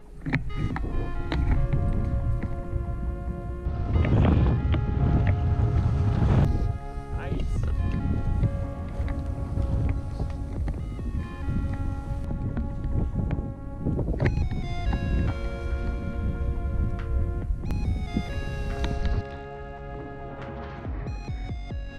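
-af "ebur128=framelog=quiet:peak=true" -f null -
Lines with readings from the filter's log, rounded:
Integrated loudness:
  I:         -28.7 LUFS
  Threshold: -38.7 LUFS
Loudness range:
  LRA:         7.2 LU
  Threshold: -48.4 LUFS
  LRA low:   -31.7 LUFS
  LRA high:  -24.5 LUFS
True peak:
  Peak:       -8.6 dBFS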